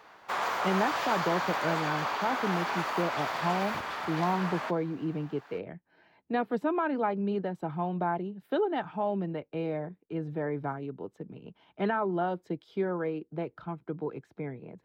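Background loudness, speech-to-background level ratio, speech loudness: −32.0 LKFS, −1.0 dB, −33.0 LKFS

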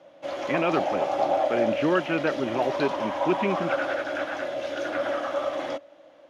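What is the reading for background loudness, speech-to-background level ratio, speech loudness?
−28.5 LKFS, 0.5 dB, −28.0 LKFS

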